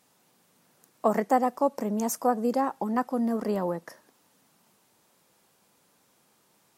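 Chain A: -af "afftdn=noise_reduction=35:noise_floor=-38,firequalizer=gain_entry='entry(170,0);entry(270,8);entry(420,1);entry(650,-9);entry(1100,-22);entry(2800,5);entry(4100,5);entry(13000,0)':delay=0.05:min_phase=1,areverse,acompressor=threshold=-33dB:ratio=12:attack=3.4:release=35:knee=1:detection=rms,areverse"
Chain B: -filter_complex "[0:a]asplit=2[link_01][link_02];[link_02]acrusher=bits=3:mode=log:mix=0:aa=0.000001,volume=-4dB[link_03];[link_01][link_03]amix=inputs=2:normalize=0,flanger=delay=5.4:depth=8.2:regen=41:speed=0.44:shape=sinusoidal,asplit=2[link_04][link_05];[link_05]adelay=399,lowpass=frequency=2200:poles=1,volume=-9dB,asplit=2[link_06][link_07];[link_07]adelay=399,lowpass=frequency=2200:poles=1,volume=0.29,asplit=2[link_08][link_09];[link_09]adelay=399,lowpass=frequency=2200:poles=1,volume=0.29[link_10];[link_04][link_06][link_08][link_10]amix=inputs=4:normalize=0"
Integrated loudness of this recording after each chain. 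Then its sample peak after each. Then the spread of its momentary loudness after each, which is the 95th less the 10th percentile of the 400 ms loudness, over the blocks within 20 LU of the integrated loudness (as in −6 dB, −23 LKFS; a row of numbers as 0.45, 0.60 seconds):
−37.5, −26.5 LKFS; −26.0, −9.5 dBFS; 4, 13 LU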